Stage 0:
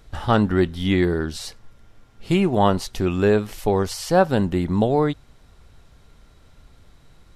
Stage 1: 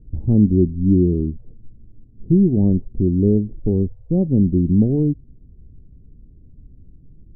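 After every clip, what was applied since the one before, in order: inverse Chebyshev low-pass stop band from 1900 Hz, stop band 80 dB; gain +6.5 dB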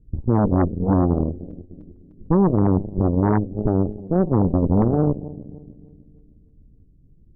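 regenerating reverse delay 0.151 s, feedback 70%, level -13 dB; added harmonics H 5 -19 dB, 6 -10 dB, 7 -20 dB, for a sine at -3 dBFS; gain -5.5 dB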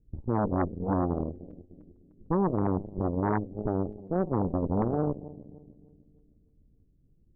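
low-pass opened by the level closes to 1300 Hz, open at -15 dBFS; low shelf 450 Hz -9 dB; gain -3 dB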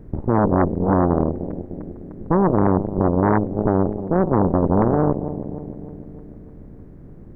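per-bin compression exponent 0.6; gain +7.5 dB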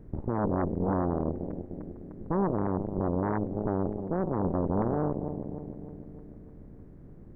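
limiter -11 dBFS, peak gain reduction 6 dB; gain -7.5 dB

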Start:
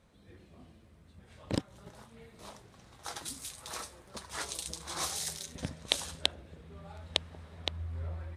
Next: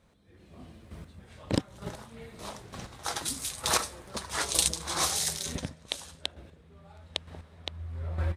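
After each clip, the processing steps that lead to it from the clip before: AGC gain up to 16 dB; chopper 1.1 Hz, depth 60%, duty 15%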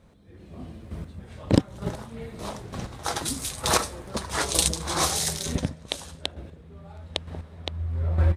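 tilt shelf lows +3.5 dB, about 800 Hz; gain +6 dB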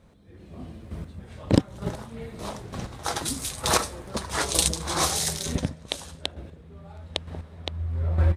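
nothing audible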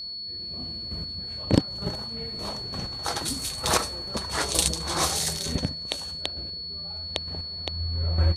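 whine 4400 Hz -32 dBFS; gain -1 dB

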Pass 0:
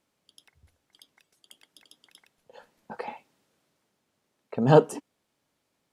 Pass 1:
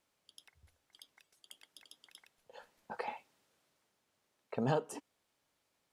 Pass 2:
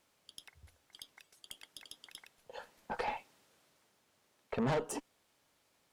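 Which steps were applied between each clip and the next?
bell 200 Hz -7 dB 2.3 oct; compressor 16:1, threshold -26 dBFS, peak gain reduction 13.5 dB; gain -2 dB
tube stage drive 36 dB, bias 0.35; gain +7.5 dB

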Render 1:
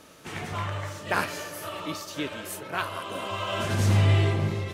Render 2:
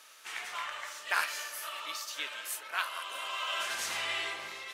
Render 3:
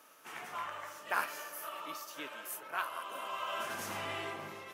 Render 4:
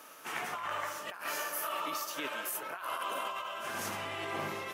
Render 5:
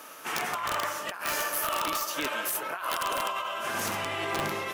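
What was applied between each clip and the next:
HPF 1300 Hz 12 dB/oct
graphic EQ 125/250/2000/4000/8000 Hz +10/+7/-7/-12/-9 dB; gain +2 dB
negative-ratio compressor -43 dBFS, ratio -1; gain +5.5 dB
wrapped overs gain 27 dB; gain +6.5 dB

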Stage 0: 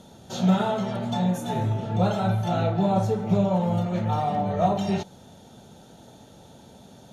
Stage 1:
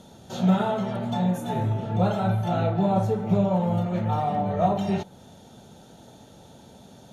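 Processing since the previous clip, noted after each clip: dynamic EQ 5600 Hz, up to -6 dB, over -53 dBFS, Q 0.88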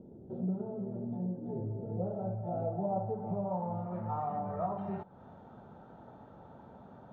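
compressor 2:1, threshold -37 dBFS, peak gain reduction 11.5 dB; low-pass sweep 380 Hz -> 1200 Hz, 1.41–4.31; gain -5 dB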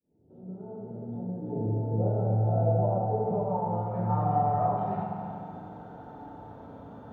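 opening faded in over 1.80 s; FDN reverb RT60 2.8 s, high-frequency decay 0.85×, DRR -3 dB; gain +2.5 dB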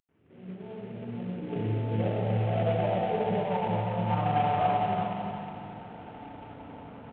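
CVSD 16 kbps; echo 0.357 s -6.5 dB

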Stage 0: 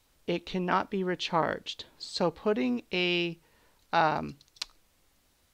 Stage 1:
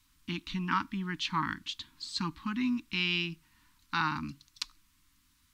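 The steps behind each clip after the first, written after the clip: elliptic band-stop 300–1000 Hz, stop band 40 dB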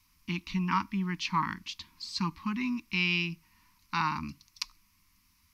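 ripple EQ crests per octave 0.83, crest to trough 9 dB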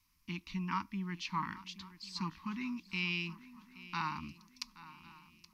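swung echo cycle 1.099 s, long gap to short 3:1, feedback 35%, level -17 dB; gain -7.5 dB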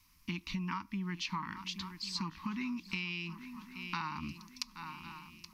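compressor 12:1, threshold -42 dBFS, peak gain reduction 12.5 dB; gain +8 dB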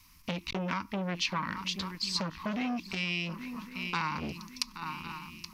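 core saturation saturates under 2300 Hz; gain +8 dB

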